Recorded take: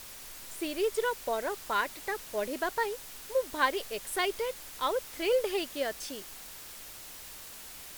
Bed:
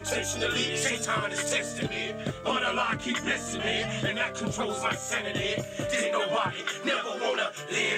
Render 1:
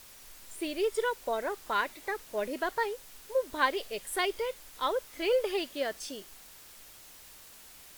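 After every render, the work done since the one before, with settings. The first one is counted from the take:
noise reduction from a noise print 6 dB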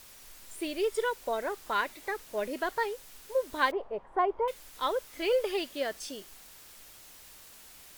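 0:03.71–0:04.48: low-pass with resonance 940 Hz, resonance Q 3.7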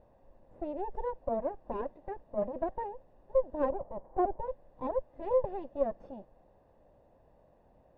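lower of the sound and its delayed copy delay 1.1 ms
low-pass with resonance 530 Hz, resonance Q 4.9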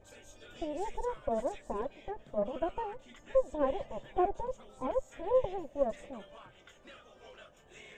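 mix in bed −26 dB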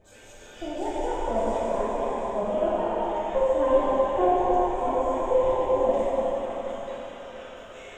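echo through a band-pass that steps 236 ms, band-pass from 920 Hz, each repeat 1.4 octaves, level −1 dB
dense smooth reverb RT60 4.4 s, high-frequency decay 0.8×, DRR −8 dB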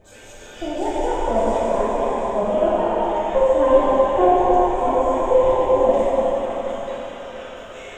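level +6.5 dB

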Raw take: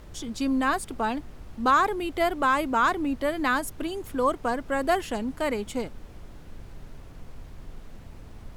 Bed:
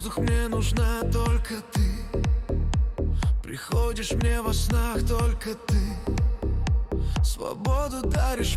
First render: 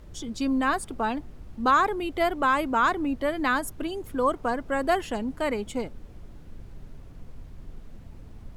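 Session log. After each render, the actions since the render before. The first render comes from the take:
broadband denoise 6 dB, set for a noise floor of −46 dBFS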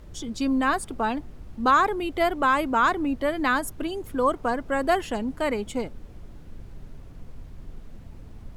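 level +1.5 dB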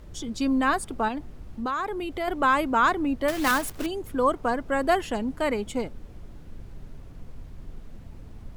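0:01.08–0:02.28: downward compressor 3 to 1, threshold −28 dBFS
0:03.28–0:03.87: one scale factor per block 3 bits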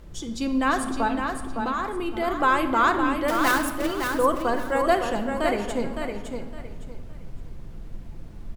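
repeating echo 561 ms, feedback 25%, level −6 dB
rectangular room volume 1,400 cubic metres, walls mixed, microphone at 0.77 metres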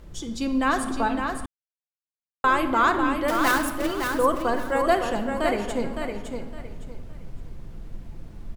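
0:01.46–0:02.44: silence

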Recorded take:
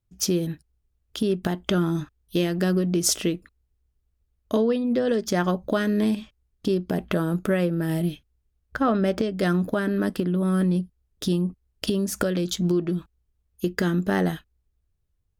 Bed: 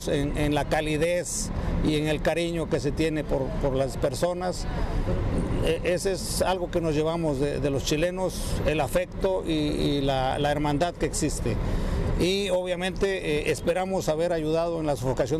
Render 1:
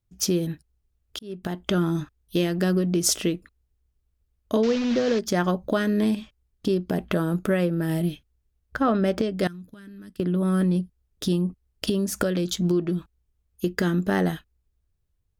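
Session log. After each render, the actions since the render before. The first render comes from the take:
0:01.19–0:01.91: fade in equal-power
0:04.63–0:05.19: linear delta modulator 32 kbit/s, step −26.5 dBFS
0:09.47–0:10.20: guitar amp tone stack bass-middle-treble 6-0-2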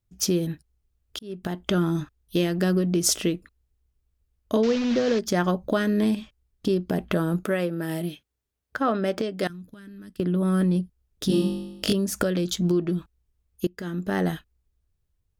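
0:07.44–0:09.50: high-pass filter 300 Hz 6 dB per octave
0:11.27–0:11.93: flutter between parallel walls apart 3.5 metres, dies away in 0.94 s
0:13.67–0:14.34: fade in, from −22.5 dB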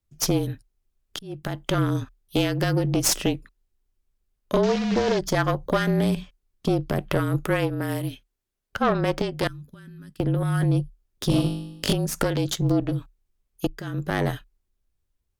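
harmonic generator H 6 −16 dB, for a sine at −7.5 dBFS
frequency shifter −35 Hz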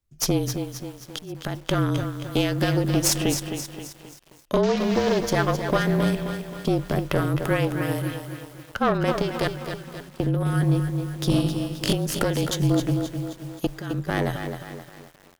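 feedback echo with a high-pass in the loop 253 ms, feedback 38%, high-pass 210 Hz, level −15 dB
feedback echo at a low word length 265 ms, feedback 55%, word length 7 bits, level −8 dB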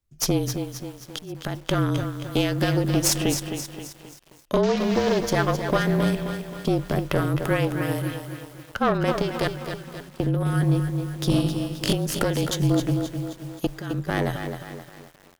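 no processing that can be heard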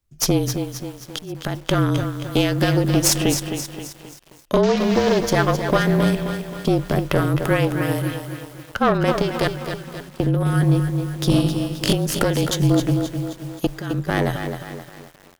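level +4 dB

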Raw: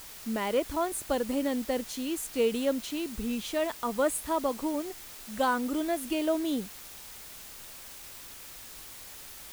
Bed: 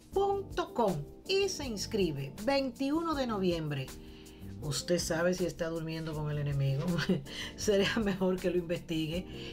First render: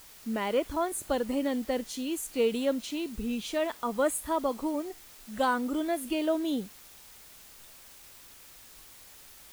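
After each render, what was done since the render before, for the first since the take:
noise reduction from a noise print 6 dB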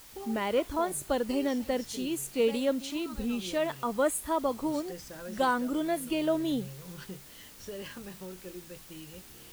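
mix in bed −13.5 dB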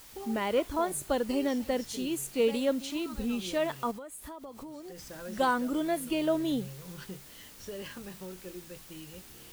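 0:03.91–0:05.11: downward compressor 12 to 1, threshold −40 dBFS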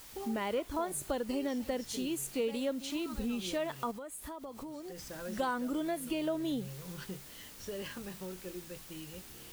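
downward compressor 2.5 to 1, threshold −33 dBFS, peak gain reduction 8 dB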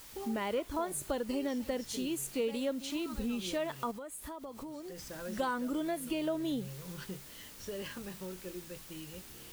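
notch filter 750 Hz, Q 21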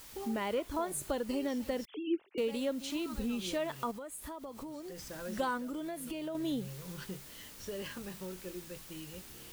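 0:01.85–0:02.38: three sine waves on the formant tracks
0:05.57–0:06.35: downward compressor 2.5 to 1, threshold −38 dBFS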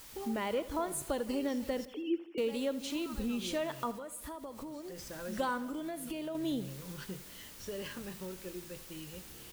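repeating echo 83 ms, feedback 59%, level −17 dB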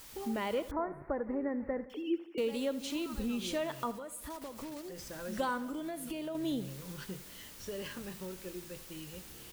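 0:00.71–0:01.90: elliptic low-pass filter 2,000 Hz
0:04.30–0:04.89: one scale factor per block 3 bits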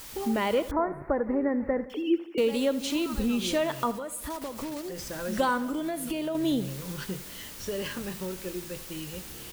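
level +8 dB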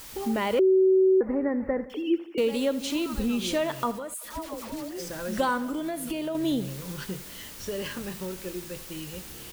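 0:00.59–0:01.21: beep over 378 Hz −16 dBFS
0:04.14–0:05.10: all-pass dispersion lows, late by 114 ms, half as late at 790 Hz

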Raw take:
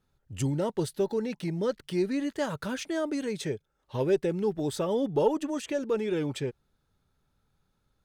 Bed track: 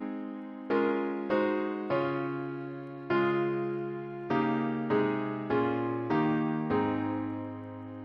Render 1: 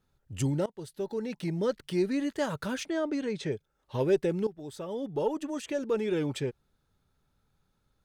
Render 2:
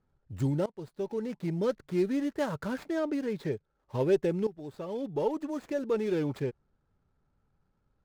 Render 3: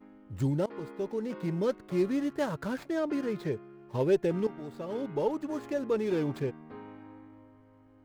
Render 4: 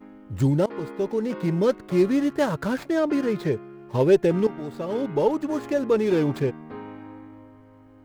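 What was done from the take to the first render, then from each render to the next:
0:00.66–0:01.51: fade in, from −22 dB; 0:02.86–0:03.52: high-frequency loss of the air 90 metres; 0:04.47–0:06.06: fade in, from −15.5 dB
running median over 15 samples
mix in bed track −17.5 dB
level +8 dB

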